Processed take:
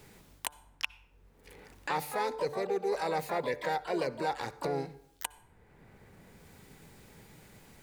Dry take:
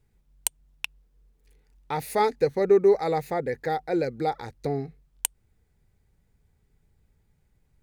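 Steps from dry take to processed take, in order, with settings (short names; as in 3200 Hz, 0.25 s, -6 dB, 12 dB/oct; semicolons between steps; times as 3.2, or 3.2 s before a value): harmoniser +3 st -8 dB, +12 st -12 dB; low shelf 340 Hz -7 dB; reverse; compressor 6:1, threshold -28 dBFS, peak gain reduction 12.5 dB; reverse; de-hum 147.7 Hz, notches 11; on a send at -20 dB: reverb RT60 0.60 s, pre-delay 52 ms; on the sum: three-band squash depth 70%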